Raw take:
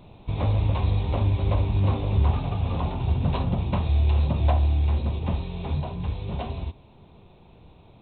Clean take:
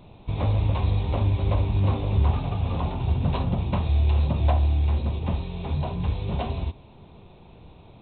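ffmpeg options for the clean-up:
-af "asetnsamples=n=441:p=0,asendcmd='5.8 volume volume 3dB',volume=1"

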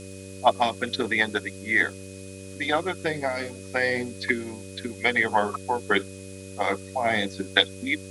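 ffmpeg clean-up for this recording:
-af "adeclick=t=4,bandreject=f=95.8:t=h:w=4,bandreject=f=191.6:t=h:w=4,bandreject=f=287.4:t=h:w=4,bandreject=f=383.2:t=h:w=4,bandreject=f=479:t=h:w=4,bandreject=f=574.8:t=h:w=4,bandreject=f=2500:w=30,afftdn=nr=30:nf=-40"

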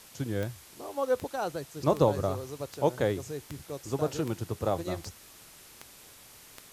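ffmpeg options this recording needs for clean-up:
-af "adeclick=t=4,afwtdn=0.0028"

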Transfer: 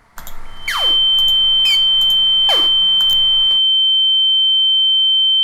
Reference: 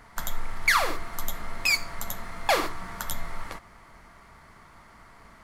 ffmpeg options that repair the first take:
-af "adeclick=t=4,bandreject=f=3100:w=30"

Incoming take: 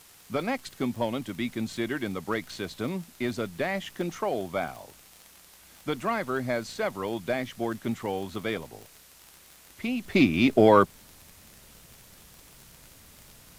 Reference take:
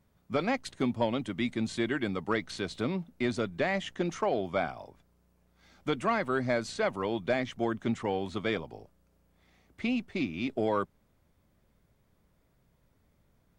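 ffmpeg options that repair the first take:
-af "adeclick=t=4,afwtdn=0.0022,asetnsamples=n=441:p=0,asendcmd='10.05 volume volume -11.5dB',volume=1"

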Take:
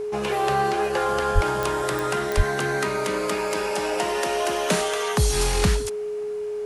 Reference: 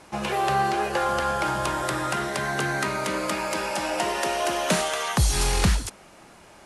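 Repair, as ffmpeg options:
-filter_complex "[0:a]adeclick=t=4,bandreject=f=420:w=30,asplit=3[s0][s1][s2];[s0]afade=t=out:st=1.34:d=0.02[s3];[s1]highpass=f=140:w=0.5412,highpass=f=140:w=1.3066,afade=t=in:st=1.34:d=0.02,afade=t=out:st=1.46:d=0.02[s4];[s2]afade=t=in:st=1.46:d=0.02[s5];[s3][s4][s5]amix=inputs=3:normalize=0,asplit=3[s6][s7][s8];[s6]afade=t=out:st=2.36:d=0.02[s9];[s7]highpass=f=140:w=0.5412,highpass=f=140:w=1.3066,afade=t=in:st=2.36:d=0.02,afade=t=out:st=2.48:d=0.02[s10];[s8]afade=t=in:st=2.48:d=0.02[s11];[s9][s10][s11]amix=inputs=3:normalize=0"

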